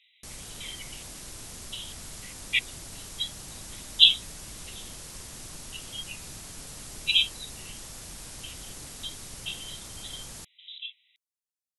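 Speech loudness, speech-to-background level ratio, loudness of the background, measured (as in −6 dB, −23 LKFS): −25.5 LKFS, 15.5 dB, −41.0 LKFS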